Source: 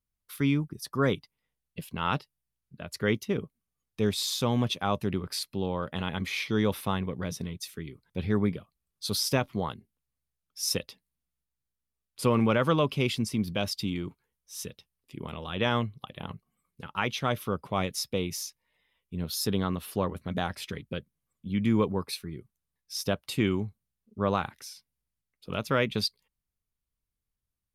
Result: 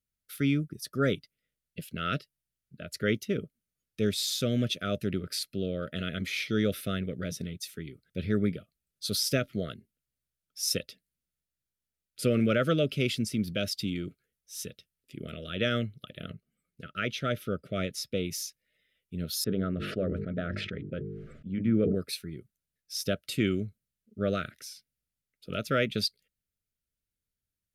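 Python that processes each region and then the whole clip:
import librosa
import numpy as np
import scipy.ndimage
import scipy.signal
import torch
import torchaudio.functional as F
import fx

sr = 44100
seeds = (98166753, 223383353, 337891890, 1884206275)

y = fx.chain(x, sr, fx.high_shelf(hz=5100.0, db=-6.5),
    fx.notch(hz=1100.0, q=19.0), at=(16.3, 18.25))
y = fx.chain(y, sr, fx.lowpass(hz=1500.0, slope=12),
    fx.hum_notches(base_hz=50, count=9),
    fx.sustainer(db_per_s=32.0), at=(19.44, 21.95))
y = scipy.signal.sosfilt(scipy.signal.ellip(3, 1.0, 40, [650.0, 1300.0], 'bandstop', fs=sr, output='sos'), y)
y = fx.low_shelf(y, sr, hz=64.0, db=-7.5)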